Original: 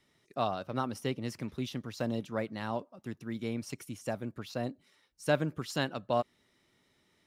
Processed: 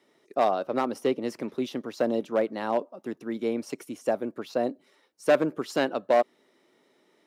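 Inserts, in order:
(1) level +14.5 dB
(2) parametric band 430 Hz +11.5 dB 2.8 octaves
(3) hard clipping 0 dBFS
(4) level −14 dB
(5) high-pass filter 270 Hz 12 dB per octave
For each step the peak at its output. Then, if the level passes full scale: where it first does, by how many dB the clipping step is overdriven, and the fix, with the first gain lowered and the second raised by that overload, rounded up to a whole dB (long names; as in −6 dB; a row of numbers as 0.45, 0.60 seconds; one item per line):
−0.5, +8.5, 0.0, −14.0, −9.0 dBFS
step 2, 8.5 dB
step 1 +5.5 dB, step 4 −5 dB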